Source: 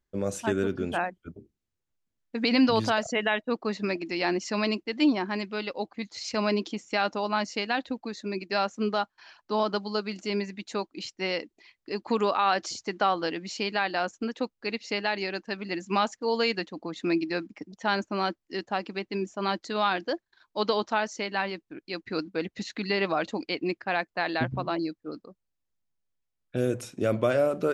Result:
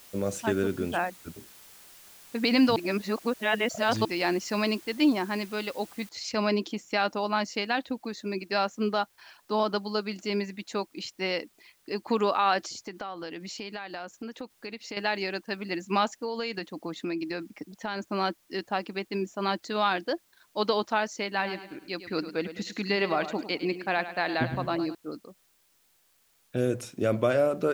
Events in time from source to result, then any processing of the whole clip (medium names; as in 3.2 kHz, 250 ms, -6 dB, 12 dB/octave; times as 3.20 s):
2.76–4.05 s: reverse
6.09 s: noise floor step -52 dB -67 dB
12.66–14.97 s: compression 4:1, threshold -35 dBFS
16.11–18.08 s: compression, threshold -28 dBFS
21.28–24.95 s: feedback delay 104 ms, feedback 43%, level -12 dB